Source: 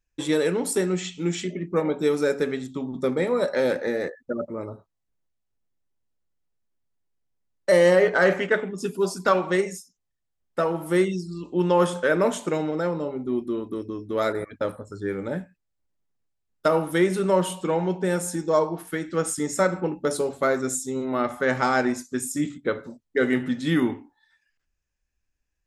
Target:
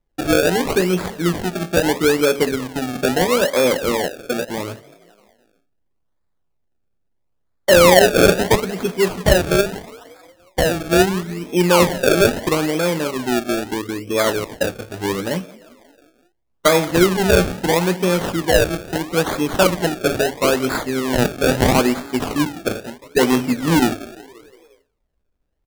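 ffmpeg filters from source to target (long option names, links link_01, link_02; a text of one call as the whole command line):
ffmpeg -i in.wav -filter_complex "[0:a]asplit=6[link_01][link_02][link_03][link_04][link_05][link_06];[link_02]adelay=176,afreqshift=33,volume=-21dB[link_07];[link_03]adelay=352,afreqshift=66,volume=-25dB[link_08];[link_04]adelay=528,afreqshift=99,volume=-29dB[link_09];[link_05]adelay=704,afreqshift=132,volume=-33dB[link_10];[link_06]adelay=880,afreqshift=165,volume=-37.1dB[link_11];[link_01][link_07][link_08][link_09][link_10][link_11]amix=inputs=6:normalize=0,acrusher=samples=30:mix=1:aa=0.000001:lfo=1:lforange=30:lforate=0.76,volume=6.5dB" out.wav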